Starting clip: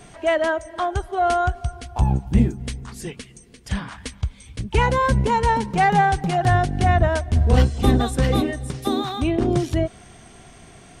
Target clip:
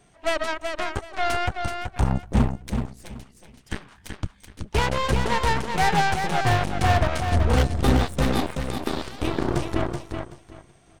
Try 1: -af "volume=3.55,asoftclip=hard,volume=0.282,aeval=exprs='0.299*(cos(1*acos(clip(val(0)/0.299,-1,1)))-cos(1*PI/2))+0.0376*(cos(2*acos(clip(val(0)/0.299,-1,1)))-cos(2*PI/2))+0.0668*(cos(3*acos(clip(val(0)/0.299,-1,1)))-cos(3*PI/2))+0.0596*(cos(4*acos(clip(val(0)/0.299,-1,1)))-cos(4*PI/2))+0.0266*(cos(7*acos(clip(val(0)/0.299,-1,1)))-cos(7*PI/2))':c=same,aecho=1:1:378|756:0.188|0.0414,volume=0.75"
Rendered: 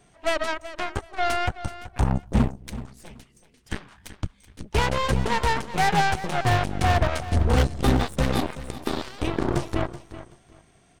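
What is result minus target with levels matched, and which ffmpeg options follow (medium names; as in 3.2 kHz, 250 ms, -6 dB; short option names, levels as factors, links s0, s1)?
echo-to-direct -8.5 dB
-af "volume=3.55,asoftclip=hard,volume=0.282,aeval=exprs='0.299*(cos(1*acos(clip(val(0)/0.299,-1,1)))-cos(1*PI/2))+0.0376*(cos(2*acos(clip(val(0)/0.299,-1,1)))-cos(2*PI/2))+0.0668*(cos(3*acos(clip(val(0)/0.299,-1,1)))-cos(3*PI/2))+0.0596*(cos(4*acos(clip(val(0)/0.299,-1,1)))-cos(4*PI/2))+0.0266*(cos(7*acos(clip(val(0)/0.299,-1,1)))-cos(7*PI/2))':c=same,aecho=1:1:378|756|1134:0.501|0.11|0.0243,volume=0.75"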